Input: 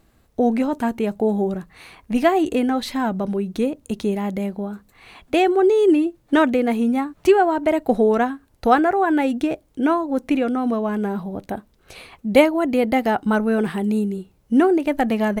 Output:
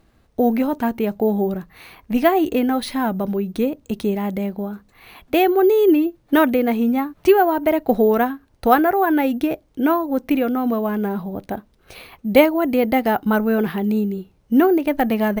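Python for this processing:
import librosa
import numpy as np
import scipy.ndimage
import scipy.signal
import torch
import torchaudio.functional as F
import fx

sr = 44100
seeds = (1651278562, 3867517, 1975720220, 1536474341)

y = np.repeat(scipy.signal.resample_poly(x, 1, 3), 3)[:len(x)]
y = y * 10.0 ** (1.0 / 20.0)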